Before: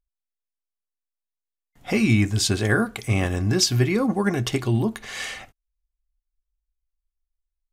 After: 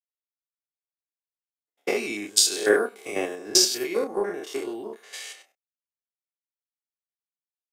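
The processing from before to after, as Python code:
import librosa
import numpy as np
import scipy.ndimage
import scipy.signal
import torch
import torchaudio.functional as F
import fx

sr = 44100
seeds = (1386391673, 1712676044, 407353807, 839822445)

y = fx.spec_steps(x, sr, hold_ms=100)
y = fx.ladder_highpass(y, sr, hz=360.0, resonance_pct=50)
y = fx.high_shelf(y, sr, hz=4600.0, db=7.5)
y = fx.transient(y, sr, attack_db=8, sustain_db=-2)
y = fx.doubler(y, sr, ms=29.0, db=-8.5)
y = fx.band_widen(y, sr, depth_pct=70)
y = y * 10.0 ** (3.5 / 20.0)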